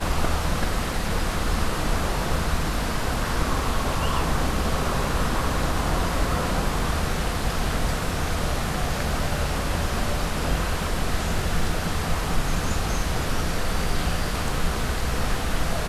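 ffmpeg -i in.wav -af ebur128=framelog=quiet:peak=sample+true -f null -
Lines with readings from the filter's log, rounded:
Integrated loudness:
  I:         -26.1 LUFS
  Threshold: -36.1 LUFS
Loudness range:
  LRA:         1.6 LU
  Threshold: -46.0 LUFS
  LRA low:   -26.6 LUFS
  LRA high:  -25.0 LUFS
Sample peak:
  Peak:       -9.8 dBFS
True peak:
  Peak:       -9.8 dBFS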